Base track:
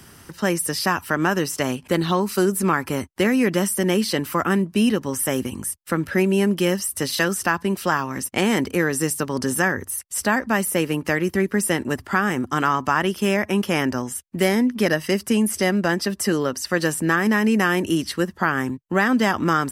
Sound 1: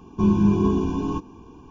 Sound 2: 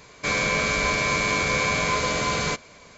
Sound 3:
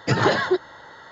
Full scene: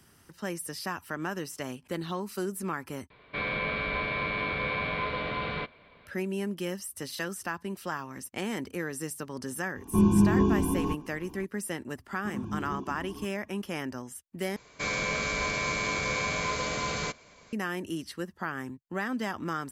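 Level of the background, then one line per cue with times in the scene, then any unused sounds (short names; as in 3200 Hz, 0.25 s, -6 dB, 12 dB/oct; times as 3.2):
base track -13.5 dB
3.1 replace with 2 -7.5 dB + steep low-pass 3800 Hz 48 dB/oct
9.75 add 1 -3 dB
12.06 add 1 -14.5 dB + tape flanging out of phase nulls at 1.9 Hz, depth 7.9 ms
14.56 replace with 2 -7 dB
not used: 3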